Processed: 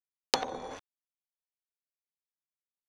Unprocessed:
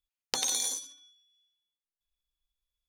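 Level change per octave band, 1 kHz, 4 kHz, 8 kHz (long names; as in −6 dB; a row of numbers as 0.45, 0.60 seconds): +8.0, −2.5, −13.5 decibels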